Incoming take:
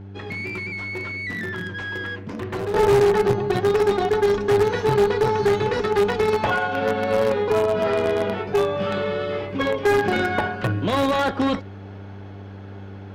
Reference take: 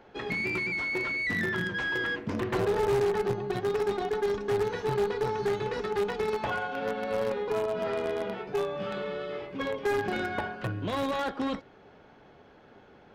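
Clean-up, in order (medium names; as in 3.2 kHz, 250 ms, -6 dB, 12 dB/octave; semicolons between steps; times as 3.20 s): de-hum 98.4 Hz, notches 4; gain correction -9.5 dB, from 2.74 s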